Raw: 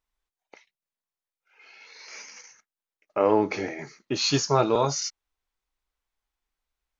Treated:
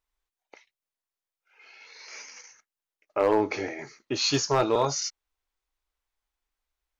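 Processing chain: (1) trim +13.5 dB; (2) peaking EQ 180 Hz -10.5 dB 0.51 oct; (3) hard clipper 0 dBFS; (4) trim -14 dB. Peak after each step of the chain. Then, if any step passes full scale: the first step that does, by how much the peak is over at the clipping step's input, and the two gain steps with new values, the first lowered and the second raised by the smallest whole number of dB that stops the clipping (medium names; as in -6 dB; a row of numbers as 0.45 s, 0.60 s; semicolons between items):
+6.5 dBFS, +6.0 dBFS, 0.0 dBFS, -14.0 dBFS; step 1, 6.0 dB; step 1 +7.5 dB, step 4 -8 dB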